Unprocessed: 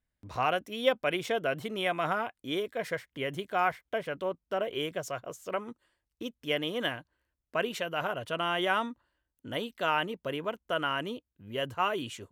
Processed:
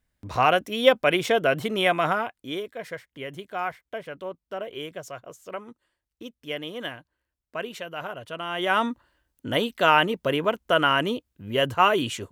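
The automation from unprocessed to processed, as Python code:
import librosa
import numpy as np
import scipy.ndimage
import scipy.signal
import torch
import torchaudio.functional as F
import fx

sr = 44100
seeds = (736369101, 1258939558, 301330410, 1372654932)

y = fx.gain(x, sr, db=fx.line((1.9, 8.5), (2.79, -2.0), (8.47, -2.0), (8.89, 10.0)))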